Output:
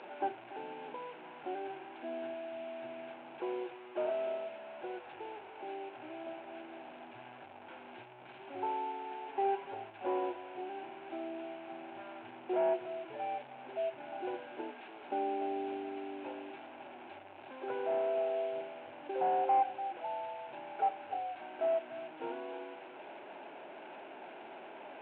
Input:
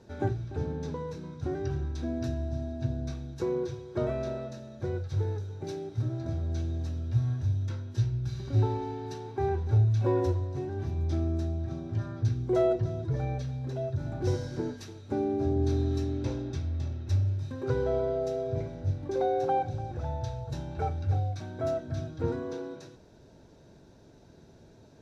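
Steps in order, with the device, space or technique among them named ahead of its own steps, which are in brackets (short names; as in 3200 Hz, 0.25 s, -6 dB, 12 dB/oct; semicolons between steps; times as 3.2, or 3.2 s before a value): digital answering machine (BPF 340–3000 Hz; delta modulation 16 kbps, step -39.5 dBFS; speaker cabinet 430–3900 Hz, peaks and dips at 470 Hz -9 dB, 800 Hz +6 dB, 1200 Hz -10 dB, 1900 Hz -9 dB, 3200 Hz -4 dB); 9.27–9.74 comb 7.2 ms, depth 65%; gain +1 dB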